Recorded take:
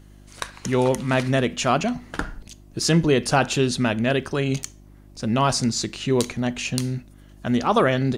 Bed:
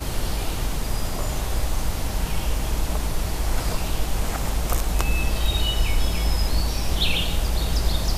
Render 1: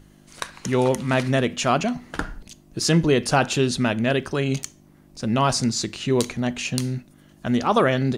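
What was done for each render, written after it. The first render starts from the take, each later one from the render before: de-hum 50 Hz, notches 2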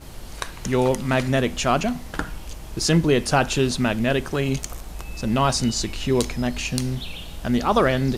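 add bed -12.5 dB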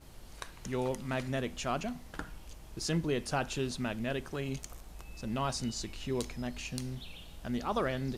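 gain -13.5 dB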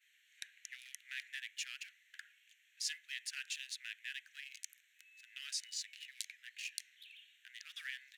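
Wiener smoothing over 9 samples; steep high-pass 1700 Hz 72 dB/oct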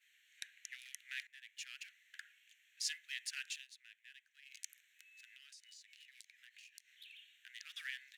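1.27–2.03 fade in, from -18.5 dB; 3.37–4.72 dip -14 dB, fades 0.31 s equal-power; 5.34–6.9 compressor 5:1, threshold -57 dBFS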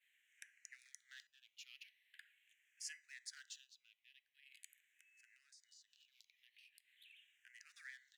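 resonator 970 Hz, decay 0.35 s, mix 50%; endless phaser -0.43 Hz

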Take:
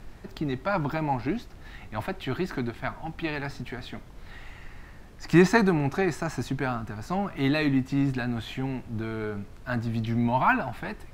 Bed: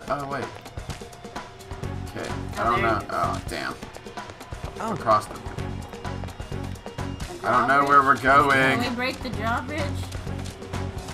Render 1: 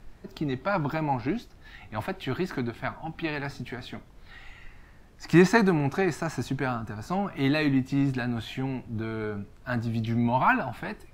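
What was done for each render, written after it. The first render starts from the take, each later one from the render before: noise print and reduce 6 dB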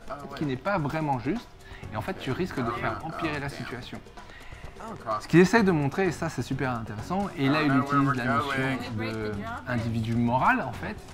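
add bed -10.5 dB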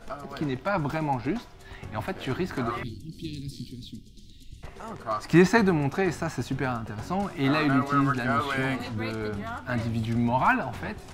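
2.83–4.63 Chebyshev band-stop 280–3600 Hz, order 3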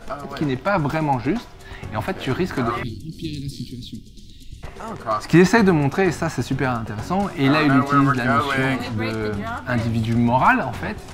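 gain +7 dB; limiter -3 dBFS, peak gain reduction 3 dB

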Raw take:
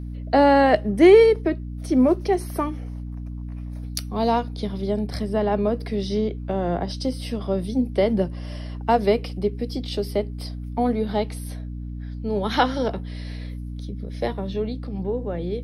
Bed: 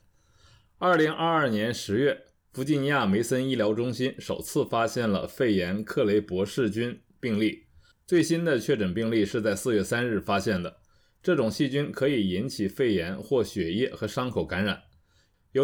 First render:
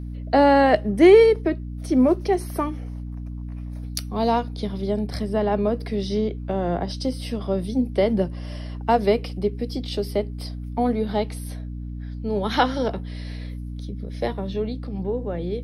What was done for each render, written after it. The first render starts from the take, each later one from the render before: nothing audible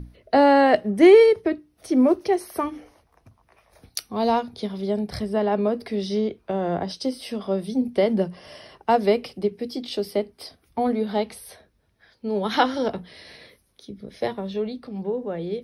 notches 60/120/180/240/300 Hz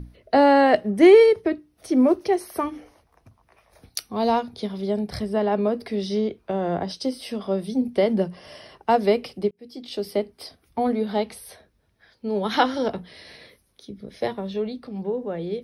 9.51–10.12 fade in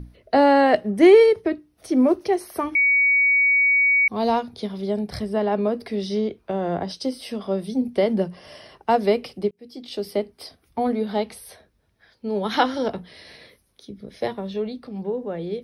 2.75–4.08 bleep 2250 Hz -14.5 dBFS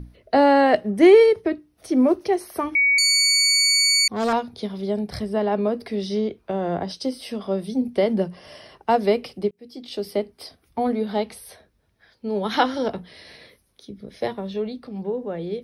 2.98–4.33 self-modulated delay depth 0.29 ms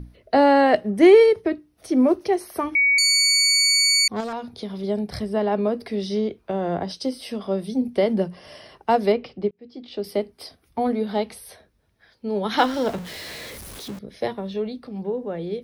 4.2–4.84 compressor, threshold -25 dBFS; 9.12–10.04 air absorption 190 m; 12.58–13.99 zero-crossing step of -33 dBFS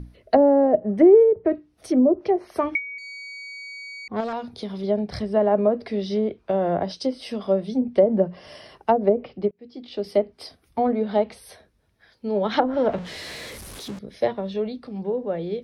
treble ducked by the level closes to 490 Hz, closed at -14 dBFS; dynamic EQ 600 Hz, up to +7 dB, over -38 dBFS, Q 3.8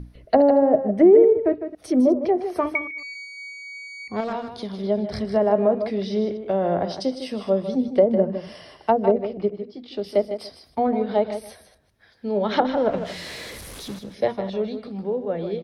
reverse delay 0.125 s, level -14 dB; echo 0.155 s -10 dB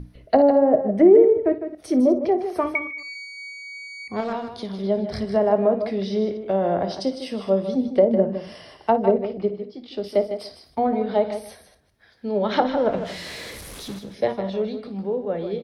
early reflections 26 ms -16 dB, 56 ms -14.5 dB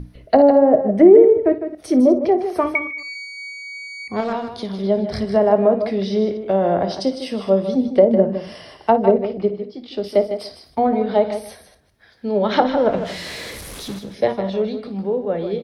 gain +4 dB; limiter -1 dBFS, peak gain reduction 1 dB

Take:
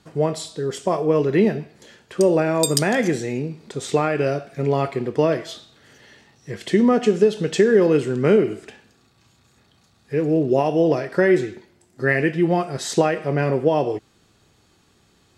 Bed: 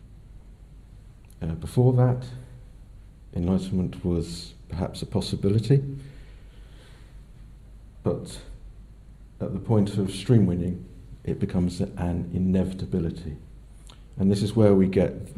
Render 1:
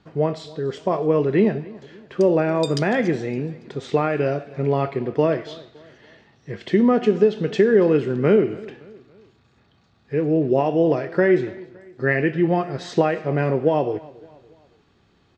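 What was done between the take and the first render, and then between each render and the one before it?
air absorption 180 m; feedback echo 0.282 s, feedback 44%, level -21.5 dB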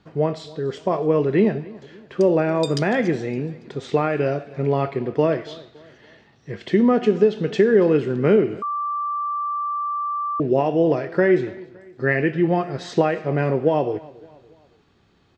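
8.62–10.4 bleep 1170 Hz -22 dBFS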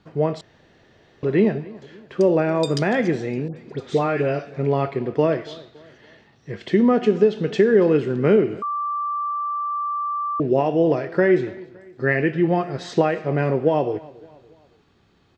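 0.41–1.23 room tone; 3.48–4.54 dispersion highs, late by 85 ms, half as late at 1600 Hz; 9.31–9.72 air absorption 63 m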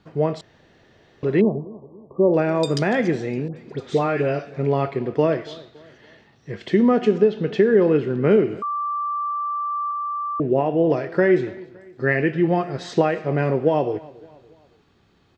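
1.41–2.34 brick-wall FIR low-pass 1200 Hz; 7.18–8.31 air absorption 120 m; 9.91–10.9 air absorption 260 m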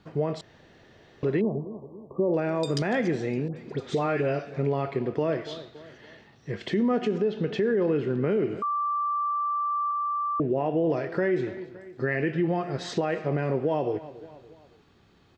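limiter -12.5 dBFS, peak gain reduction 8 dB; compressor 1.5:1, threshold -29 dBFS, peak gain reduction 5 dB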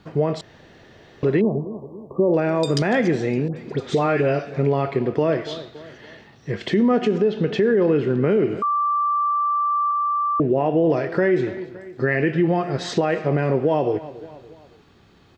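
gain +6.5 dB

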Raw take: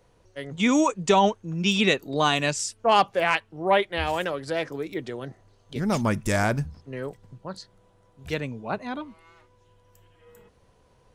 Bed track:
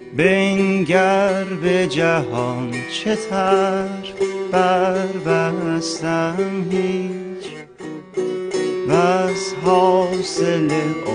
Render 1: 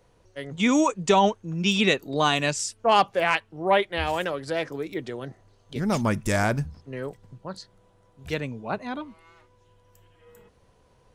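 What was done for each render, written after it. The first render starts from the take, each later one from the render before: nothing audible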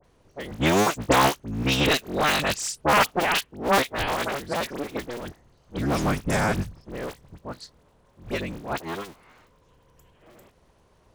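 cycle switcher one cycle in 3, inverted; dispersion highs, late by 44 ms, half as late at 2100 Hz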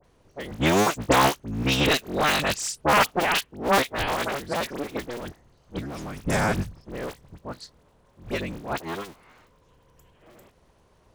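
5.79–6.25 compressor, threshold -32 dBFS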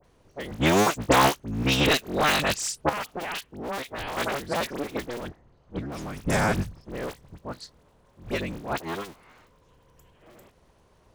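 2.89–4.17 compressor 3:1, threshold -32 dBFS; 5.27–5.92 LPF 1700 Hz 6 dB/oct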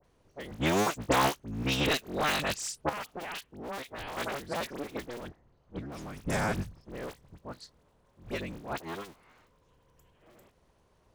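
gain -6.5 dB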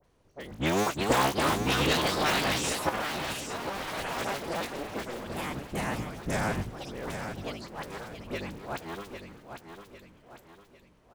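on a send: feedback echo 0.801 s, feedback 42%, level -8 dB; on the sum: echoes that change speed 0.456 s, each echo +3 st, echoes 2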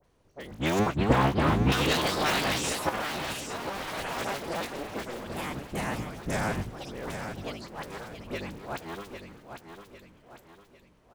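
0.79–1.72 tone controls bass +10 dB, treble -14 dB

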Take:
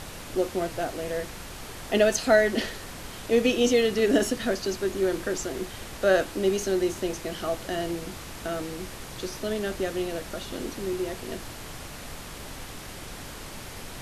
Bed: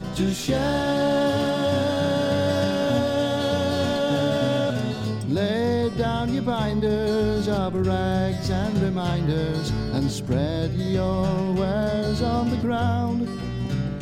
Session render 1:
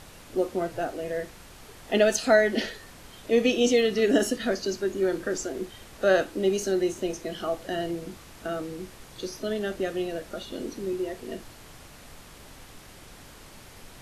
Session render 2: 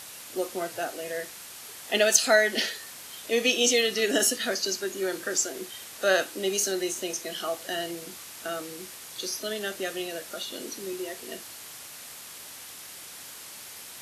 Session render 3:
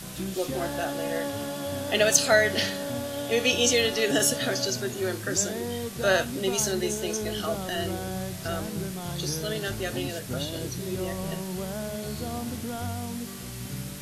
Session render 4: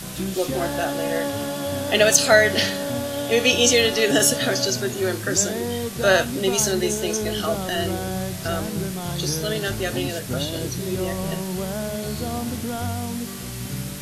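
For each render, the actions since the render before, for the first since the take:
noise print and reduce 8 dB
HPF 71 Hz; tilt +3.5 dB/oct
add bed -10.5 dB
gain +5.5 dB; limiter -1 dBFS, peak gain reduction 2.5 dB

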